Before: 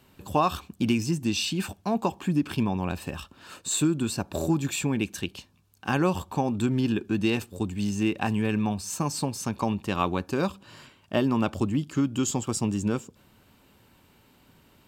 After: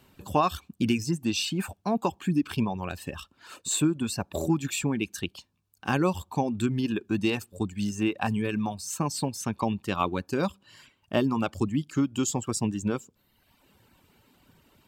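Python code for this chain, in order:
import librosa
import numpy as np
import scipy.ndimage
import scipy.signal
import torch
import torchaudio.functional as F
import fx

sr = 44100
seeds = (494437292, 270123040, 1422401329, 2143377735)

y = fx.dereverb_blind(x, sr, rt60_s=1.0)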